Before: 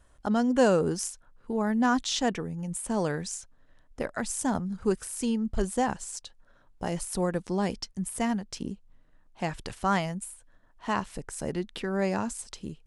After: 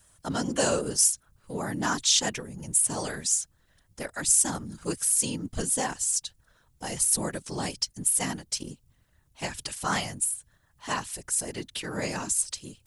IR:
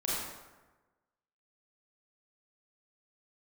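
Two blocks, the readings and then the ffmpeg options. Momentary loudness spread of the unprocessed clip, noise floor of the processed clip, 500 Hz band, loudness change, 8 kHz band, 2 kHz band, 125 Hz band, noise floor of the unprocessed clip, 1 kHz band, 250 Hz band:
13 LU, -66 dBFS, -5.0 dB, +3.0 dB, +13.0 dB, +1.0 dB, -2.5 dB, -60 dBFS, -3.0 dB, -6.5 dB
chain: -af "afftfilt=real='hypot(re,im)*cos(2*PI*random(0))':imag='hypot(re,im)*sin(2*PI*random(1))':win_size=512:overlap=0.75,crystalizer=i=7.5:c=0"

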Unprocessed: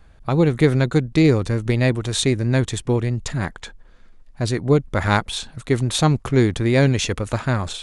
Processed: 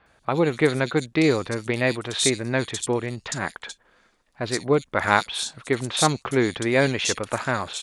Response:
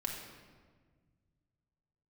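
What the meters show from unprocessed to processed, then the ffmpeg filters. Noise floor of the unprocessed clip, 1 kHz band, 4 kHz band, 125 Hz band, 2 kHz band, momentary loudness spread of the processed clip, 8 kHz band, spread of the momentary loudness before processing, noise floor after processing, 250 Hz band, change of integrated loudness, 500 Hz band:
-48 dBFS, +1.0 dB, 0.0 dB, -11.0 dB, +1.5 dB, 8 LU, +2.0 dB, 8 LU, -64 dBFS, -5.5 dB, -3.5 dB, -2.0 dB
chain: -filter_complex "[0:a]highpass=f=600:p=1,acrossover=split=3600[a][b];[b]adelay=60[c];[a][c]amix=inputs=2:normalize=0,volume=2.5dB"

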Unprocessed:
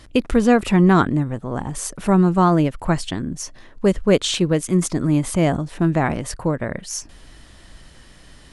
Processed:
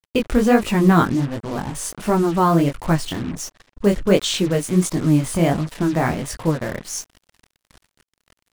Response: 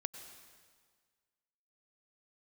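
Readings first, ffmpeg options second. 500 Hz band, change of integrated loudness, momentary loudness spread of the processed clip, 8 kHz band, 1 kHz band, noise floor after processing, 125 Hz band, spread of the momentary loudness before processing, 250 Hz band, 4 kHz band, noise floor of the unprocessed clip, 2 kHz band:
0.0 dB, 0.0 dB, 12 LU, 0.0 dB, 0.0 dB, under -85 dBFS, -0.5 dB, 13 LU, -0.5 dB, 0.0 dB, -47 dBFS, 0.0 dB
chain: -af "flanger=delay=18:depth=6.7:speed=1.4,acrusher=bits=5:mix=0:aa=0.5,volume=3dB"

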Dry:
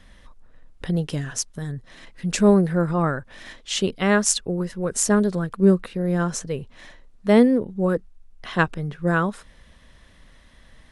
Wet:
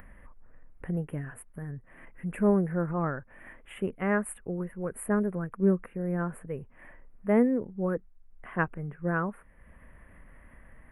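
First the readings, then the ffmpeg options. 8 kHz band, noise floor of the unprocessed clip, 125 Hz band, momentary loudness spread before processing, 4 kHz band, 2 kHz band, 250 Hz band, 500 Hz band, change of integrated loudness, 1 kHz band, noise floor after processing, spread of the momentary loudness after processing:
-21.0 dB, -52 dBFS, -8.0 dB, 15 LU, under -25 dB, -8.5 dB, -8.0 dB, -8.0 dB, -8.5 dB, -8.0 dB, -57 dBFS, 16 LU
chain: -af "asuperstop=centerf=5100:order=8:qfactor=0.64,acompressor=mode=upward:threshold=-34dB:ratio=2.5,volume=-8dB"

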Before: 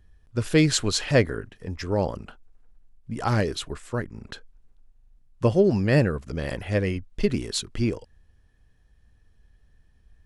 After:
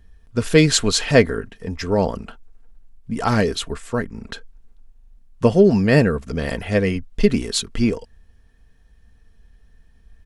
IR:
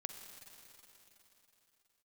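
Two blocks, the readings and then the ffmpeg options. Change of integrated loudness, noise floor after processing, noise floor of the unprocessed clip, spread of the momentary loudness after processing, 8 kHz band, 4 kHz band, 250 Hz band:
+5.5 dB, -53 dBFS, -60 dBFS, 17 LU, +6.0 dB, +6.0 dB, +6.5 dB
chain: -af "aecho=1:1:4.4:0.39,volume=5.5dB"

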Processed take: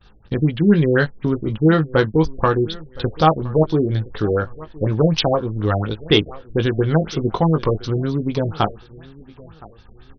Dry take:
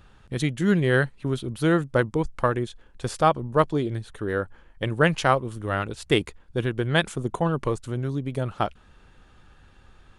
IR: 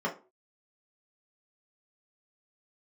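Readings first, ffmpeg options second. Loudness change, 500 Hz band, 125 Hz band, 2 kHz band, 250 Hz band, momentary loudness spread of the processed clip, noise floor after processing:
+6.0 dB, +6.0 dB, +7.5 dB, +0.5 dB, +7.5 dB, 8 LU, -47 dBFS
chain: -filter_complex "[0:a]bandreject=f=610:w=12,asplit=2[a][b];[b]acompressor=threshold=-33dB:ratio=6,volume=2dB[c];[a][c]amix=inputs=2:normalize=0,highshelf=f=3k:t=q:w=1.5:g=6.5,agate=range=-33dB:threshold=-37dB:ratio=3:detection=peak,acontrast=56,asplit=2[d][e];[e]adelay=19,volume=-7dB[f];[d][f]amix=inputs=2:normalize=0,aecho=1:1:1017|2034:0.0841|0.0252,afftfilt=real='re*lt(b*sr/1024,660*pow(6400/660,0.5+0.5*sin(2*PI*4.1*pts/sr)))':imag='im*lt(b*sr/1024,660*pow(6400/660,0.5+0.5*sin(2*PI*4.1*pts/sr)))':win_size=1024:overlap=0.75,volume=-1.5dB"

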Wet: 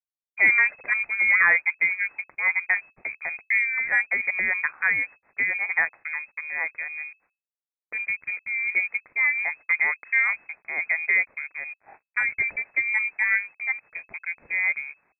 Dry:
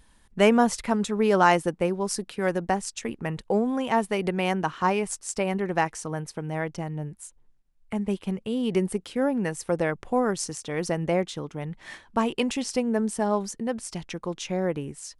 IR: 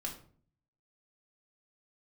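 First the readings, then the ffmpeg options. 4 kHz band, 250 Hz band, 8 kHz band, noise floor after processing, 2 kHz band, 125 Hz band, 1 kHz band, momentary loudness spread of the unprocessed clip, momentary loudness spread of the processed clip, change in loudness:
under -40 dB, under -25 dB, under -40 dB, under -85 dBFS, +14.0 dB, under -25 dB, -11.0 dB, 11 LU, 13 LU, +3.5 dB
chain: -af "adynamicequalizer=threshold=0.0126:dfrequency=590:dqfactor=1.3:tfrequency=590:tqfactor=1.3:attack=5:release=100:ratio=0.375:range=4:mode=boostabove:tftype=bell,acontrast=47,aeval=exprs='sgn(val(0))*max(abs(val(0))-0.01,0)':c=same,lowpass=f=2.2k:t=q:w=0.5098,lowpass=f=2.2k:t=q:w=0.6013,lowpass=f=2.2k:t=q:w=0.9,lowpass=f=2.2k:t=q:w=2.563,afreqshift=-2600,volume=-8dB"

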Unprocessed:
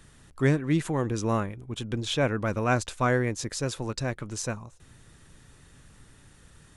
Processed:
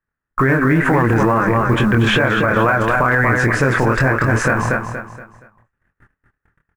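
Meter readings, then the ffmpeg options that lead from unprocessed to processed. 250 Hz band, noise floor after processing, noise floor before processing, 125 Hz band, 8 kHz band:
+12.0 dB, -82 dBFS, -56 dBFS, +12.0 dB, +2.5 dB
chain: -af "agate=range=-55dB:threshold=-46dB:ratio=16:detection=peak,firequalizer=gain_entry='entry(200,0);entry(1600,13);entry(3800,-18)':delay=0.05:min_phase=1,acompressor=threshold=-29dB:ratio=6,acrusher=bits=9:mode=log:mix=0:aa=0.000001,flanger=delay=22.5:depth=4.3:speed=2.2,aecho=1:1:236|472|708|944:0.447|0.152|0.0516|0.0176,alimiter=level_in=30.5dB:limit=-1dB:release=50:level=0:latency=1,volume=-5dB"

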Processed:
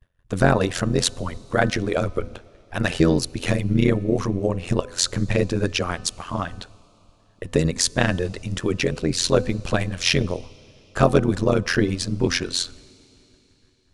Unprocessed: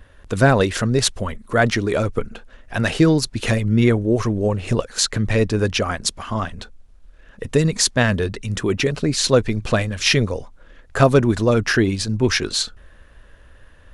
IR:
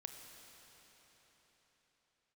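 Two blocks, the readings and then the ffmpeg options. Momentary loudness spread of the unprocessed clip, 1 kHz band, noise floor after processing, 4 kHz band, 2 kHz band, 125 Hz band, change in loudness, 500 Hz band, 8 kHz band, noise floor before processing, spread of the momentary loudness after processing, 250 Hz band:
10 LU, -3.0 dB, -59 dBFS, -3.0 dB, -4.0 dB, -3.5 dB, -3.0 dB, -3.0 dB, -3.0 dB, -48 dBFS, 10 LU, -3.0 dB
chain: -filter_complex "[0:a]agate=range=-33dB:threshold=-33dB:ratio=3:detection=peak,tremolo=f=88:d=0.919,bandreject=f=252.2:t=h:w=4,bandreject=f=504.4:t=h:w=4,bandreject=f=756.6:t=h:w=4,bandreject=f=1.0088k:t=h:w=4,bandreject=f=1.261k:t=h:w=4,bandreject=f=1.5132k:t=h:w=4,bandreject=f=1.7654k:t=h:w=4,asplit=2[a][b];[b]asuperstop=centerf=1700:order=4:qfactor=2.5[c];[1:a]atrim=start_sample=2205,asetrate=52920,aresample=44100[d];[c][d]afir=irnorm=-1:irlink=0,volume=-11dB[e];[a][e]amix=inputs=2:normalize=0"

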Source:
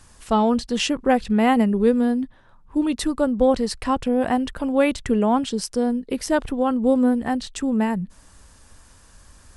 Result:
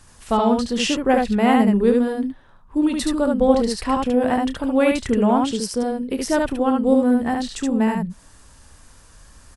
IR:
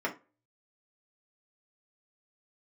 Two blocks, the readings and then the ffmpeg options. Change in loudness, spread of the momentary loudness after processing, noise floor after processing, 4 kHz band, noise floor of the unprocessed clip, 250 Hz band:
+1.5 dB, 8 LU, -49 dBFS, +2.0 dB, -52 dBFS, +1.5 dB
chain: -af "aecho=1:1:30|73:0.237|0.708"

